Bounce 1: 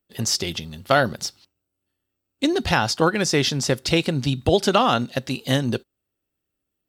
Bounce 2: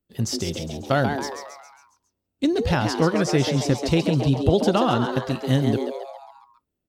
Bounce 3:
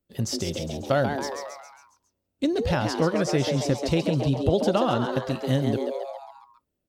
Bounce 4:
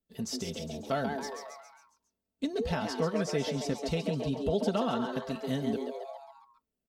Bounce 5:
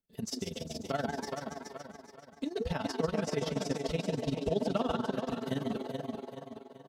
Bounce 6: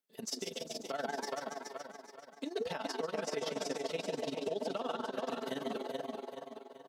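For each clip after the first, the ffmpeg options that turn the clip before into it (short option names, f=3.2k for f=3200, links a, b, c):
-filter_complex "[0:a]lowshelf=f=440:g=11.5,asplit=2[a][b];[b]asplit=6[c][d][e][f][g][h];[c]adelay=136,afreqshift=140,volume=-7dB[i];[d]adelay=272,afreqshift=280,volume=-12.8dB[j];[e]adelay=408,afreqshift=420,volume=-18.7dB[k];[f]adelay=544,afreqshift=560,volume=-24.5dB[l];[g]adelay=680,afreqshift=700,volume=-30.4dB[m];[h]adelay=816,afreqshift=840,volume=-36.2dB[n];[i][j][k][l][m][n]amix=inputs=6:normalize=0[o];[a][o]amix=inputs=2:normalize=0,volume=-7.5dB"
-filter_complex "[0:a]equalizer=f=570:w=4.8:g=6,asplit=2[a][b];[b]acompressor=threshold=-28dB:ratio=6,volume=0.5dB[c];[a][c]amix=inputs=2:normalize=0,volume=-6dB"
-af "aecho=1:1:4.5:0.69,volume=-8.5dB"
-filter_complex "[0:a]asplit=2[a][b];[b]aecho=0:1:415|830|1245|1660|2075:0.447|0.192|0.0826|0.0355|0.0153[c];[a][c]amix=inputs=2:normalize=0,tremolo=f=21:d=0.824,volume=1dB"
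-af "highpass=360,alimiter=level_in=2.5dB:limit=-24dB:level=0:latency=1:release=112,volume=-2.5dB,volume=1dB"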